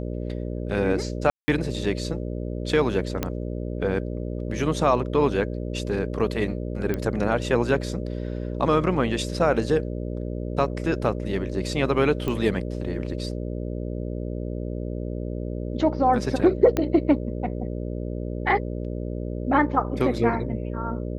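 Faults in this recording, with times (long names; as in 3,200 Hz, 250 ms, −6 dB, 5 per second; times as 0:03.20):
mains buzz 60 Hz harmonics 10 −30 dBFS
0:01.30–0:01.48: drop-out 180 ms
0:03.23: click −10 dBFS
0:06.94: click −14 dBFS
0:12.28: click −15 dBFS
0:16.77: click −10 dBFS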